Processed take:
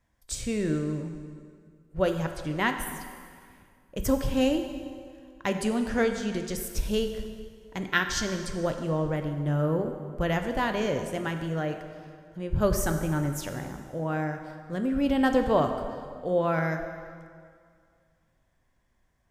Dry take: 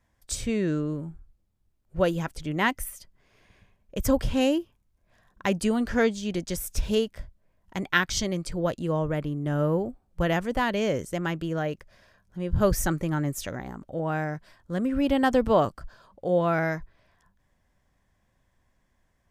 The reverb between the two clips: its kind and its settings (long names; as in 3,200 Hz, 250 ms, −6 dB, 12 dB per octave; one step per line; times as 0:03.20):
dense smooth reverb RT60 2.1 s, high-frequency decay 0.8×, DRR 5.5 dB
level −2.5 dB